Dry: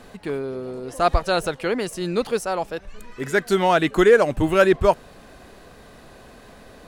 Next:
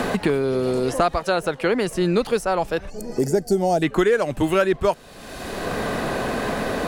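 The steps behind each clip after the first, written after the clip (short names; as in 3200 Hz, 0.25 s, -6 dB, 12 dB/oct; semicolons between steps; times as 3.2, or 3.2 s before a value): spectral gain 2.9–3.82, 890–4300 Hz -19 dB; three-band squash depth 100%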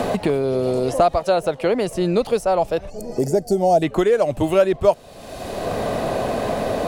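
fifteen-band EQ 100 Hz +6 dB, 630 Hz +8 dB, 1600 Hz -6 dB; gain -1 dB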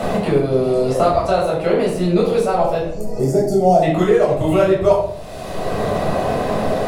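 shoebox room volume 1000 m³, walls furnished, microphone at 6.8 m; gain -6 dB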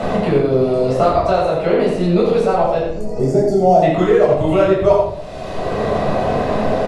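air absorption 70 m; echo 85 ms -7 dB; gain +1 dB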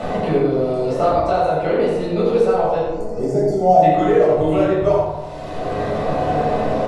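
FDN reverb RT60 1.3 s, low-frequency decay 0.75×, high-frequency decay 0.3×, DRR 1.5 dB; gain -5 dB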